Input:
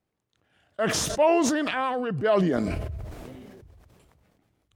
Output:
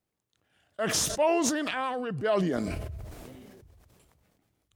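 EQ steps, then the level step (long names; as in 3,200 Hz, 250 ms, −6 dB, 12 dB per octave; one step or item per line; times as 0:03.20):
high-shelf EQ 4,600 Hz +8 dB
−4.5 dB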